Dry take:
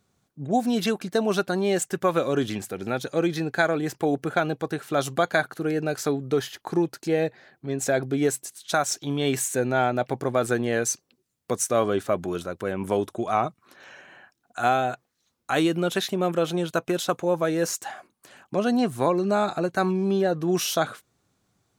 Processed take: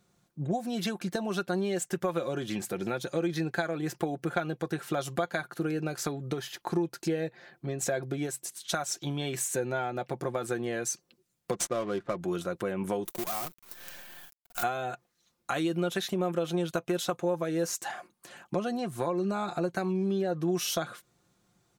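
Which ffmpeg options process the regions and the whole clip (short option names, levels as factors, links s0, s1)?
-filter_complex "[0:a]asettb=1/sr,asplit=3[s0][s1][s2];[s0]atrim=end=11.524[s3];[s1]atrim=start=11.52:end=12.2,asetpts=PTS-STARTPTS,afade=t=in:d=0.004:c=qsin,afade=t=out:st=0.676:d=0.004:c=qsin,highshelf=f=4400:g=5.5,bandreject=f=780:w=6.4,adynamicsmooth=sensitivity=5.5:basefreq=600[s4];[s2]atrim=start=12.196[s5];[s3][s4]acrossfade=d=0.004:c1=hsin:c2=qsin[s6];[s6][s5]acrossfade=d=0.004:c1=qsin:c2=hsin,asettb=1/sr,asplit=3[s7][s8][s9];[s7]atrim=end=13.054[s10];[s8]atrim=start=13.05:end=14.63,asetpts=PTS-STARTPTS,afade=t=in:d=0.004:c=qsin,afade=t=out:st=1.576:d=0.004:c=qsin,acompressor=threshold=0.0126:ratio=2:attack=3.2:release=140:knee=1:detection=peak,acrusher=bits=7:dc=4:mix=0:aa=0.000001,aemphasis=mode=production:type=50fm[s11];[s9]atrim=start=14.626[s12];[s10][s11]acrossfade=d=0.004:c1=hsin:c2=qsin[s13];[s13][s12]acrossfade=d=0.004:c1=qsin:c2=hsin,acompressor=threshold=0.0355:ratio=5,aecho=1:1:5.7:0.49"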